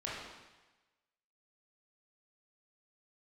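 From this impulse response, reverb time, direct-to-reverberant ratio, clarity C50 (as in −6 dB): 1.1 s, −7.0 dB, −1.0 dB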